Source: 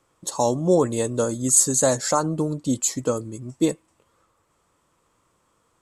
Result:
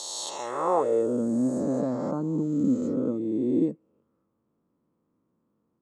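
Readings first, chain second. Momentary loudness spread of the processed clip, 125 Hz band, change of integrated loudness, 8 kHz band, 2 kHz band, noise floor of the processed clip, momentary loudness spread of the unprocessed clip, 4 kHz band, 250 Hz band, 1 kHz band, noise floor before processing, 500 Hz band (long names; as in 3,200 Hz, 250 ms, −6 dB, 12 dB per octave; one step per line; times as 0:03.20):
5 LU, −7.5 dB, −5.0 dB, below −15 dB, below −10 dB, −76 dBFS, 11 LU, can't be measured, 0.0 dB, −3.5 dB, −68 dBFS, −4.5 dB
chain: peak hold with a rise ahead of every peak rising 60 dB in 2.75 s
band-pass filter sweep 4,200 Hz → 230 Hz, 0:00.20–0:01.18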